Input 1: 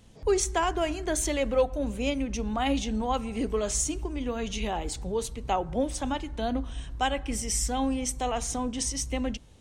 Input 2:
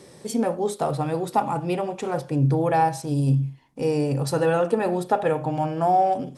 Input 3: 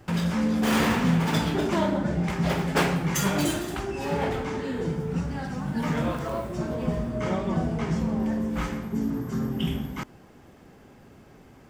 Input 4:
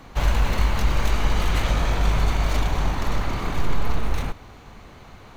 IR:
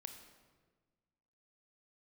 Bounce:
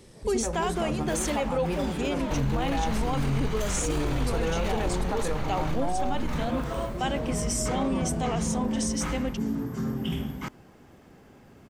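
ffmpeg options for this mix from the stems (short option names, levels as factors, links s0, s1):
-filter_complex "[0:a]volume=0.891[s0];[1:a]equalizer=f=670:w=1.3:g=-4,volume=0.501,asplit=2[s1][s2];[2:a]alimiter=limit=0.112:level=0:latency=1:release=20,adelay=450,volume=0.841[s3];[3:a]acompressor=threshold=0.0794:ratio=6,adelay=2150,volume=0.75[s4];[s2]apad=whole_len=535397[s5];[s3][s5]sidechaincompress=threshold=0.02:ratio=8:attack=23:release=809[s6];[s0][s1][s6][s4]amix=inputs=4:normalize=0,alimiter=limit=0.119:level=0:latency=1:release=11"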